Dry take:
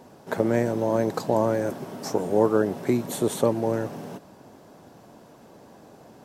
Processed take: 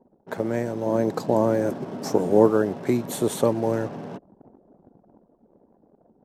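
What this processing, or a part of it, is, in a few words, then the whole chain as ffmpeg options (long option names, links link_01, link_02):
voice memo with heavy noise removal: -filter_complex "[0:a]asettb=1/sr,asplit=3[link_01][link_02][link_03];[link_01]atrim=end=0.864[link_04];[link_02]atrim=start=0.86:end=2.51,asetpts=PTS-STARTPTS,afade=type=in:duration=0.004:curve=qsin,afade=type=out:start_time=1.646:duration=0.004:curve=qsin,equalizer=frequency=260:width=0.49:gain=5[link_05];[link_03]atrim=start=2.506[link_06];[link_04][link_05]acrossfade=duration=0.004:curve1=hsin:curve2=qsin[link_07];[link_07][link_06]acrossfade=duration=0.004:curve1=qsin:curve2=hsin,anlmdn=0.1,dynaudnorm=framelen=420:gausssize=7:maxgain=11.5dB,volume=-3.5dB"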